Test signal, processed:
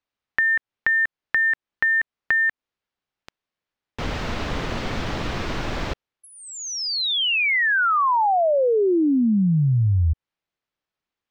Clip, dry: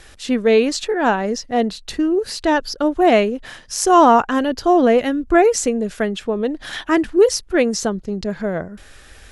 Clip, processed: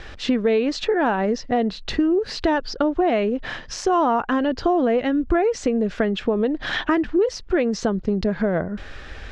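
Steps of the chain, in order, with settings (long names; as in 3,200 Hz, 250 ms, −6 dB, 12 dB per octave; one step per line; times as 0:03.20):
in parallel at −2.5 dB: brickwall limiter −13.5 dBFS
on the sum: downward compressor 4 to 1, threshold −21 dBFS
high-frequency loss of the air 190 metres
level +3 dB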